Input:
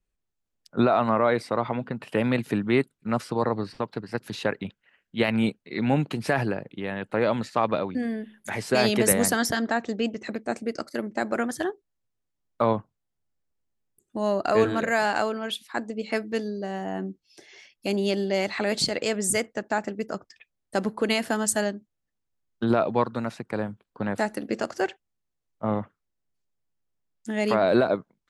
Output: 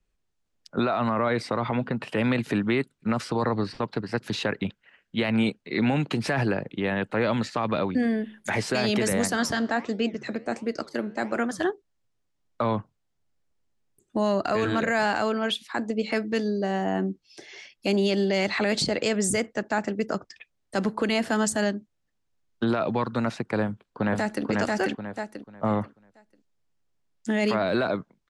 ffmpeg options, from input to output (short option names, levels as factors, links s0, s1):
-filter_complex "[0:a]asettb=1/sr,asplit=3[s0][s1][s2];[s0]atrim=end=9.274[s3];[s1]atrim=start=9.27:end=11.61,asetpts=PTS-STARTPTS,afade=t=in:d=0.004:c=qsin,afade=t=out:st=2.336:d=0.004:c=qsin,flanger=delay=5.1:depth=7.7:regen=-88:speed=1.4:shape=sinusoidal[s4];[s2]atrim=start=11.606[s5];[s3][s4]acrossfade=d=0.004:c1=hsin:c2=qsin[s6];[s6][s5]acrossfade=d=0.004:c1=qsin:c2=hsin,asplit=2[s7][s8];[s8]afade=t=in:st=23.63:d=0.01,afade=t=out:st=24.45:d=0.01,aecho=0:1:490|980|1470|1960:0.944061|0.236015|0.0590038|0.014751[s9];[s7][s9]amix=inputs=2:normalize=0,lowpass=7800,acrossover=split=280|1100[s10][s11][s12];[s10]acompressor=threshold=0.0316:ratio=4[s13];[s11]acompressor=threshold=0.0316:ratio=4[s14];[s12]acompressor=threshold=0.0316:ratio=4[s15];[s13][s14][s15]amix=inputs=3:normalize=0,alimiter=limit=0.0891:level=0:latency=1:release=25,volume=1.88"